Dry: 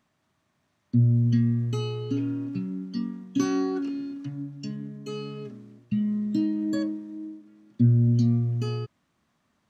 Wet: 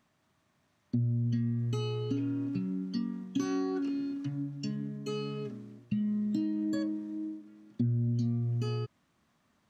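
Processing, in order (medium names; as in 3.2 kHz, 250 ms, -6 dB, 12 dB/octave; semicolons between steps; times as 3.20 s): compression 3:1, threshold -30 dBFS, peak gain reduction 11.5 dB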